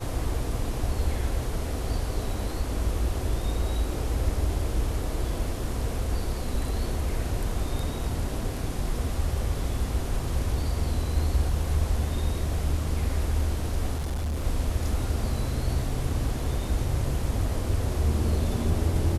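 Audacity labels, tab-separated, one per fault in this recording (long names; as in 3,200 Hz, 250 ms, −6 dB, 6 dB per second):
13.970000	14.440000	clipping −25.5 dBFS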